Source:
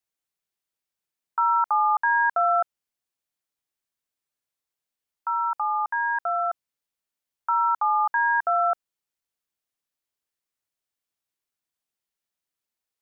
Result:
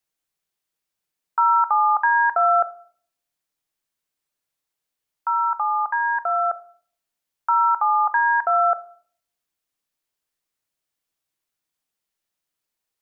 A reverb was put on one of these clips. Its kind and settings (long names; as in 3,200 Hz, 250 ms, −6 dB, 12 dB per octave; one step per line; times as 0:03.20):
rectangular room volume 600 cubic metres, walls furnished, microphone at 0.54 metres
level +4 dB